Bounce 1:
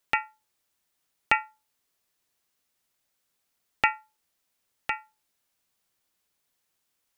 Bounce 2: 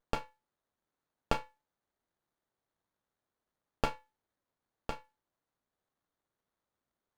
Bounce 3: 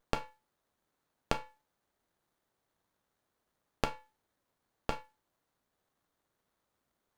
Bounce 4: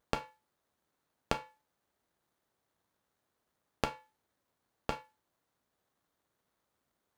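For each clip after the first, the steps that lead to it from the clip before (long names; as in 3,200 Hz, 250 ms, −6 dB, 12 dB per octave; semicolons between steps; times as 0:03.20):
windowed peak hold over 17 samples; level −7.5 dB
downward compressor 6 to 1, threshold −34 dBFS, peak gain reduction 10.5 dB; level +6.5 dB
high-pass filter 42 Hz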